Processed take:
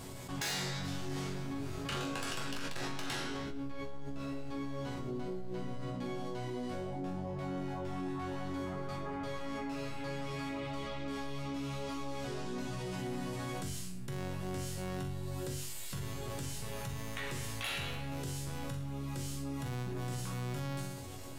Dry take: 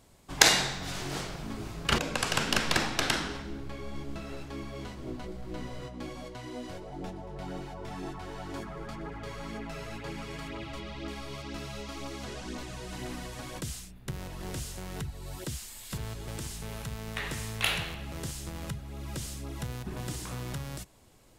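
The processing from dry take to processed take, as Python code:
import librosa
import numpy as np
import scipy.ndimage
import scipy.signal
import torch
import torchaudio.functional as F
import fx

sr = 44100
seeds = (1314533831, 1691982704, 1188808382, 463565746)

y = fx.peak_eq(x, sr, hz=150.0, db=3.0, octaves=2.5)
y = fx.resonator_bank(y, sr, root=42, chord='sus4', decay_s=0.46)
y = 10.0 ** (-37.0 / 20.0) * np.tanh(y / 10.0 ** (-37.0 / 20.0))
y = fx.env_flatten(y, sr, amount_pct=70)
y = y * librosa.db_to_amplitude(3.5)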